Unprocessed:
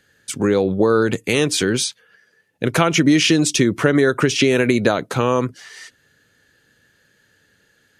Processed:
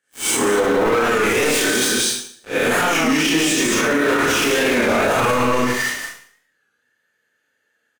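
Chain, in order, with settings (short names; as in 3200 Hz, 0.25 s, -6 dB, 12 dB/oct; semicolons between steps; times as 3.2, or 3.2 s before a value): spectral swells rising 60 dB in 0.43 s; HPF 1000 Hz 6 dB/oct; echo 0.179 s -4.5 dB; 1.84–4.05 compressor 3:1, threshold -25 dBFS, peak gain reduction 9.5 dB; high shelf 2500 Hz -8 dB; sample leveller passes 5; bell 4300 Hz -6 dB 0.83 oct; Schroeder reverb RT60 0.56 s, combs from 25 ms, DRR -7 dB; maximiser +4 dB; record warp 33 1/3 rpm, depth 100 cents; gain -8 dB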